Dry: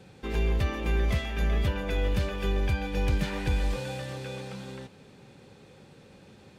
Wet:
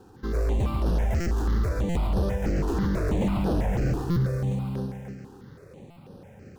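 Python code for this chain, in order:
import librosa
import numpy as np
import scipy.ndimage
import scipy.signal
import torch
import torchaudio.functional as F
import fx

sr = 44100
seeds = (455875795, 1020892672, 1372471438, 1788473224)

p1 = scipy.ndimage.median_filter(x, 15, mode='constant')
p2 = fx.graphic_eq(p1, sr, hz=(125, 250, 2000), db=(9, 4, 4), at=(2.44, 4.23))
p3 = fx.echo_heads(p2, sr, ms=137, heads='first and second', feedback_pct=46, wet_db=-8)
p4 = np.clip(10.0 ** (27.5 / 20.0) * p3, -1.0, 1.0) / 10.0 ** (27.5 / 20.0)
p5 = p3 + (p4 * librosa.db_to_amplitude(-5.0))
p6 = fx.dynamic_eq(p5, sr, hz=2300.0, q=1.7, threshold_db=-53.0, ratio=4.0, max_db=-6)
p7 = 10.0 ** (-21.0 / 20.0) * (np.abs((p6 / 10.0 ** (-21.0 / 20.0) + 3.0) % 4.0 - 2.0) - 1.0)
p8 = fx.buffer_glitch(p7, sr, at_s=(1.2, 1.89, 4.1, 5.9), block=256, repeats=10)
p9 = fx.phaser_held(p8, sr, hz=6.1, low_hz=580.0, high_hz=7300.0)
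y = p9 * librosa.db_to_amplitude(2.5)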